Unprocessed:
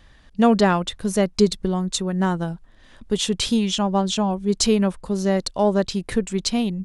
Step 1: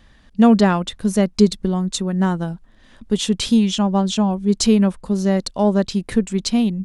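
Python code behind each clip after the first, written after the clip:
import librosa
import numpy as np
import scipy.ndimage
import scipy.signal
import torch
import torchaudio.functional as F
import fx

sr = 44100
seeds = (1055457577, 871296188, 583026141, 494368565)

y = fx.peak_eq(x, sr, hz=220.0, db=6.0, octaves=0.56)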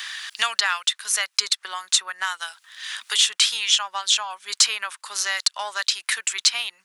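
y = scipy.signal.sosfilt(scipy.signal.butter(4, 1300.0, 'highpass', fs=sr, output='sos'), x)
y = fx.band_squash(y, sr, depth_pct=70)
y = y * librosa.db_to_amplitude(8.0)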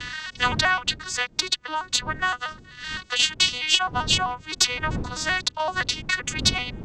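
y = fx.vocoder_arp(x, sr, chord='major triad', root=59, every_ms=129)
y = fx.dmg_wind(y, sr, seeds[0], corner_hz=190.0, level_db=-36.0)
y = fx.cheby_harmonics(y, sr, harmonics=(2,), levels_db=(-20,), full_scale_db=-3.0)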